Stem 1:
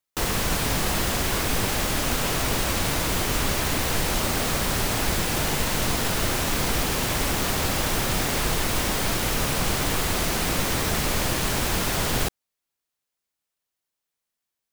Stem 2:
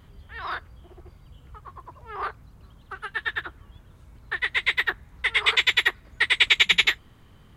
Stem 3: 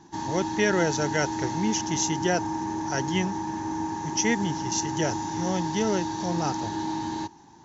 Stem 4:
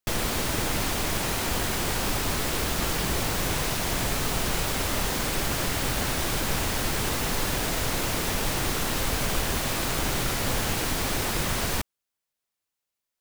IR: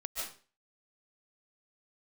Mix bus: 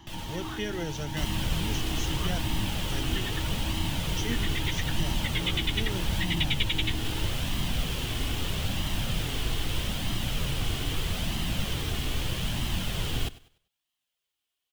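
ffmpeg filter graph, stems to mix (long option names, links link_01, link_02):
-filter_complex "[0:a]adelay=1000,volume=1.5dB,asplit=2[link_01][link_02];[link_02]volume=-19.5dB[link_03];[1:a]volume=0dB[link_04];[2:a]volume=0.5dB[link_05];[3:a]alimiter=limit=-23dB:level=0:latency=1:release=133,volume=0dB[link_06];[link_03]aecho=0:1:98|196|294|392:1|0.27|0.0729|0.0197[link_07];[link_01][link_04][link_05][link_06][link_07]amix=inputs=5:normalize=0,equalizer=frequency=3100:width=2.5:gain=12.5,acrossover=split=250[link_08][link_09];[link_09]acompressor=threshold=-49dB:ratio=1.5[link_10];[link_08][link_10]amix=inputs=2:normalize=0,flanger=delay=1:depth=1.8:regen=-47:speed=0.79:shape=sinusoidal"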